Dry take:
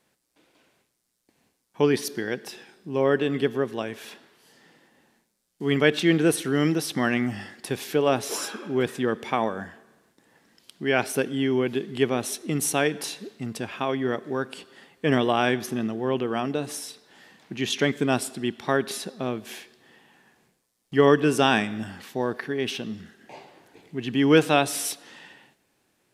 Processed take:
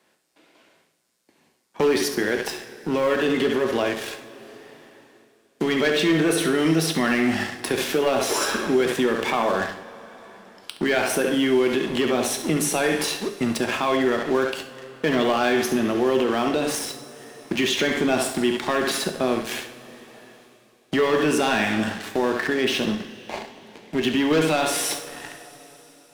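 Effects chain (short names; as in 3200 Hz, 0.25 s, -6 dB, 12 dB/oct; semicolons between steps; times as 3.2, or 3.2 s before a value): HPF 260 Hz 6 dB/oct; high shelf 5700 Hz -6.5 dB; on a send: flutter echo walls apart 11.8 m, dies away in 0.38 s; on the sum: sample leveller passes 3; limiter -14.5 dBFS, peak gain reduction 9.5 dB; two-slope reverb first 0.45 s, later 2.6 s, from -18 dB, DRR 5 dB; three-band squash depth 40%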